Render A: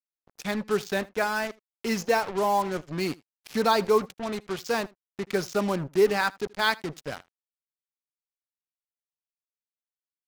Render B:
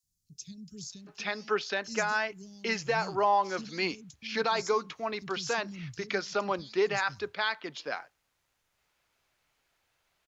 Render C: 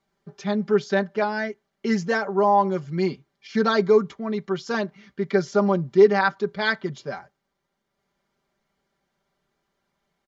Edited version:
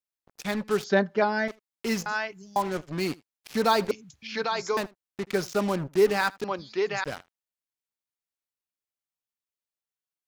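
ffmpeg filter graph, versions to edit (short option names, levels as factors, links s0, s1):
-filter_complex "[1:a]asplit=3[s0][s1][s2];[0:a]asplit=5[s3][s4][s5][s6][s7];[s3]atrim=end=0.842[s8];[2:a]atrim=start=0.838:end=1.482[s9];[s4]atrim=start=1.478:end=2.062[s10];[s0]atrim=start=2.058:end=2.562[s11];[s5]atrim=start=2.558:end=3.912[s12];[s1]atrim=start=3.908:end=4.772[s13];[s6]atrim=start=4.768:end=6.442[s14];[s2]atrim=start=6.438:end=7.042[s15];[s7]atrim=start=7.038[s16];[s8][s9]acrossfade=d=0.004:c1=hsin:c2=hsin[s17];[s17][s10]acrossfade=d=0.004:c1=hsin:c2=hsin[s18];[s18][s11]acrossfade=d=0.004:c1=hsin:c2=hsin[s19];[s19][s12]acrossfade=d=0.004:c1=hsin:c2=hsin[s20];[s20][s13]acrossfade=d=0.004:c1=hsin:c2=hsin[s21];[s21][s14]acrossfade=d=0.004:c1=hsin:c2=hsin[s22];[s22][s15]acrossfade=d=0.004:c1=hsin:c2=hsin[s23];[s23][s16]acrossfade=d=0.004:c1=hsin:c2=hsin"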